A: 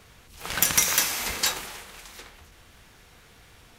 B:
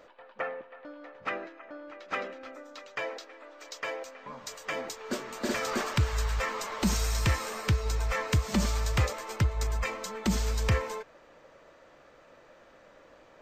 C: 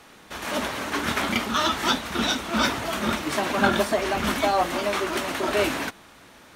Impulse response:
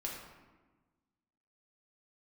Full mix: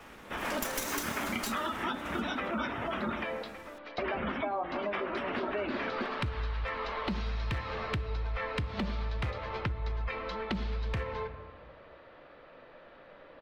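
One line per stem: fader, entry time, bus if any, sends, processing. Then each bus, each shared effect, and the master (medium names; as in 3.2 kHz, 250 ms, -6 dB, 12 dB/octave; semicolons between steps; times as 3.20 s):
-4.5 dB, 0.00 s, no send, comb filter that takes the minimum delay 3.2 ms
+0.5 dB, 0.25 s, send -9 dB, steep low-pass 4.1 kHz 36 dB/octave; hard clipper -21 dBFS, distortion -20 dB
-2.5 dB, 0.00 s, muted 3.24–3.98 s, send -9 dB, spectral gate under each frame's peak -20 dB strong; Savitzky-Golay filter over 25 samples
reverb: on, RT60 1.3 s, pre-delay 4 ms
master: compression 6:1, threshold -31 dBFS, peak gain reduction 12.5 dB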